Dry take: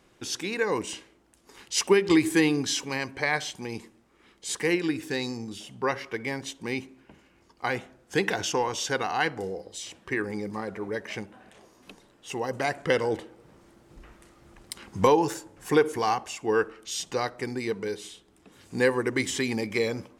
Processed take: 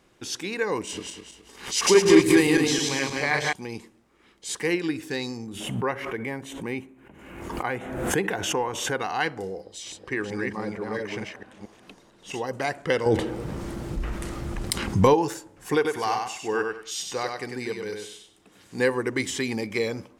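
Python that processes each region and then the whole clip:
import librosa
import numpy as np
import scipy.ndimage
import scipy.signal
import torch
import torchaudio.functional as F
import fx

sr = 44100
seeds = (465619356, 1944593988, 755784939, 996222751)

y = fx.chain(x, sr, fx.reverse_delay_fb(ms=105, feedback_pct=59, wet_db=-1.0),
    fx.echo_single(ms=190, db=-16.5),
    fx.pre_swell(db_per_s=120.0), at=(0.79, 3.53))
y = fx.chain(y, sr, fx.peak_eq(hz=4900.0, db=-14.5, octaves=0.96),
    fx.pre_swell(db_per_s=47.0), at=(5.46, 9.0))
y = fx.chain(y, sr, fx.reverse_delay(ms=225, wet_db=-2.0),
    fx.high_shelf(hz=12000.0, db=-9.0), at=(9.63, 12.47))
y = fx.chain(y, sr, fx.low_shelf(hz=220.0, db=9.5),
    fx.env_flatten(amount_pct=50), at=(13.06, 15.14))
y = fx.chain(y, sr, fx.low_shelf(hz=480.0, db=-4.5),
    fx.echo_feedback(ms=97, feedback_pct=25, wet_db=-4.5), at=(15.75, 18.79))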